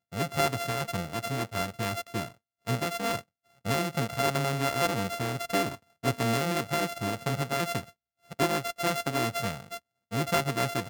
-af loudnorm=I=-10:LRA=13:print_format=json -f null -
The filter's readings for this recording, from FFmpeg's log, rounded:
"input_i" : "-29.9",
"input_tp" : "-11.2",
"input_lra" : "2.7",
"input_thresh" : "-40.3",